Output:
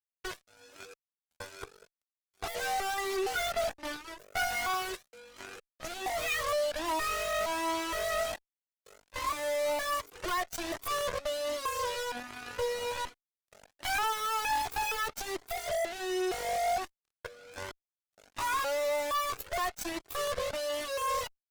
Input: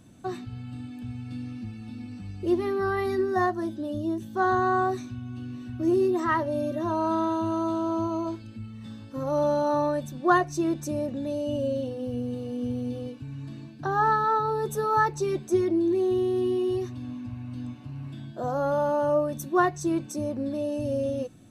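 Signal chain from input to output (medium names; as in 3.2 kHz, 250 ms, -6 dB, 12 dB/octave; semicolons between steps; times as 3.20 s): pitch shift switched off and on +11.5 st, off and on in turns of 466 ms; in parallel at 0 dB: peak limiter -18.5 dBFS, peak gain reduction 11.5 dB; on the sum: inverse Chebyshev high-pass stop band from 210 Hz, stop band 40 dB; fuzz box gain 30 dB, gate -38 dBFS; Chebyshev shaper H 3 -7 dB, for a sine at -10 dBFS; Shepard-style flanger rising 1.3 Hz; trim -6 dB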